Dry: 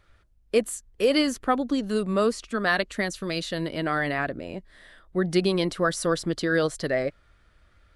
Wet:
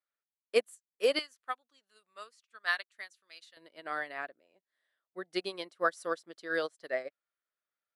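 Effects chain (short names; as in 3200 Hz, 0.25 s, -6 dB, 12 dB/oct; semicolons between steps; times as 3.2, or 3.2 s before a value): HPF 500 Hz 12 dB/oct, from 1.19 s 1200 Hz, from 3.57 s 480 Hz; upward expander 2.5:1, over -40 dBFS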